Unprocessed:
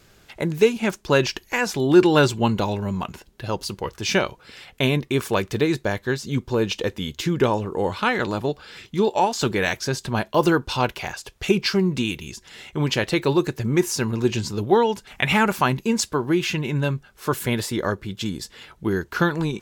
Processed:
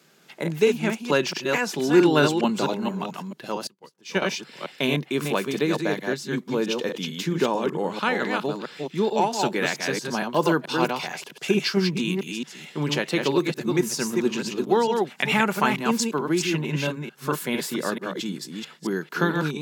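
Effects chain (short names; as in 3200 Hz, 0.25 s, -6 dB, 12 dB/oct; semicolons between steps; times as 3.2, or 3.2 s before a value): reverse delay 0.222 s, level -4 dB; Chebyshev high-pass 150 Hz, order 5; 3.67–4.22 upward expander 2.5:1, over -36 dBFS; gain -2.5 dB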